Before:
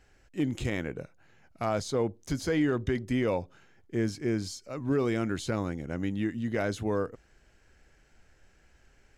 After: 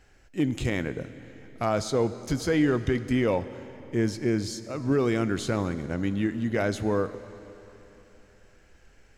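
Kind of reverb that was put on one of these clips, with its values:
comb and all-pass reverb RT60 3.5 s, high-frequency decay 0.9×, pre-delay 5 ms, DRR 13 dB
level +3.5 dB

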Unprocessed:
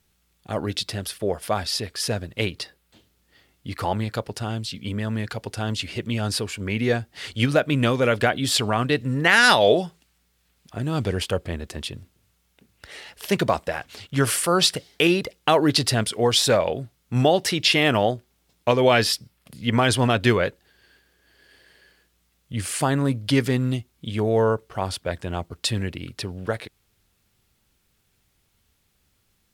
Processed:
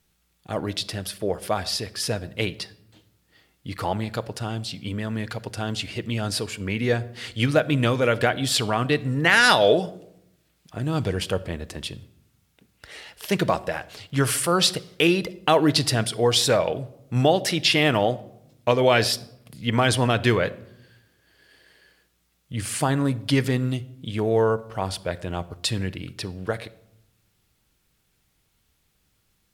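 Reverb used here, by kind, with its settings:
rectangular room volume 2,300 cubic metres, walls furnished, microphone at 0.56 metres
level −1 dB

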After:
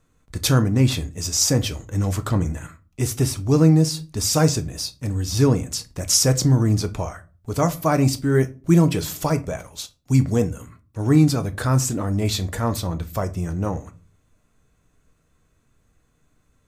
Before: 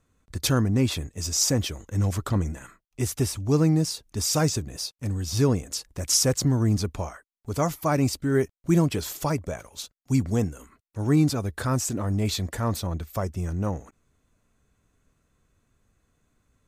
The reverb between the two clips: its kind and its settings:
rectangular room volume 180 cubic metres, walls furnished, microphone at 0.52 metres
level +3.5 dB

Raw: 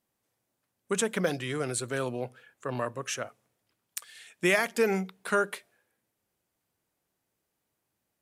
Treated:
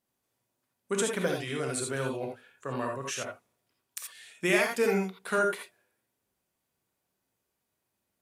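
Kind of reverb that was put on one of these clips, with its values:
reverb whose tail is shaped and stops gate 100 ms rising, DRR 1 dB
level −3 dB

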